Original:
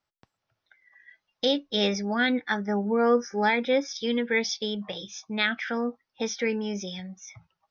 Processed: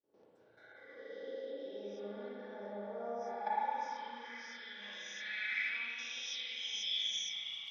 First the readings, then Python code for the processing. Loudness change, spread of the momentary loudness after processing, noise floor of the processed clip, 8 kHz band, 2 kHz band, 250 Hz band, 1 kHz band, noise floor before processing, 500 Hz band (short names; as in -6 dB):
-12.5 dB, 12 LU, -66 dBFS, n/a, -11.0 dB, -25.0 dB, -8.5 dB, -84 dBFS, -17.5 dB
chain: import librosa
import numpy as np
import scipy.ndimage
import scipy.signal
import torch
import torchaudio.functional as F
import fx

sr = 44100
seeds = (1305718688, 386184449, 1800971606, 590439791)

y = fx.spec_swells(x, sr, rise_s=0.72)
y = fx.recorder_agc(y, sr, target_db=-19.5, rise_db_per_s=74.0, max_gain_db=30)
y = fx.high_shelf(y, sr, hz=3700.0, db=11.5)
y = y + 0.42 * np.pad(y, (int(3.5 * sr / 1000.0), 0))[:len(y)]
y = fx.level_steps(y, sr, step_db=16)
y = fx.bass_treble(y, sr, bass_db=2, treble_db=11)
y = fx.rev_spring(y, sr, rt60_s=3.1, pass_ms=(34, 54), chirp_ms=30, drr_db=-7.0)
y = fx.filter_sweep_bandpass(y, sr, from_hz=430.0, to_hz=3200.0, start_s=2.41, end_s=6.38, q=5.5)
y = y * 10.0 ** (-6.0 / 20.0)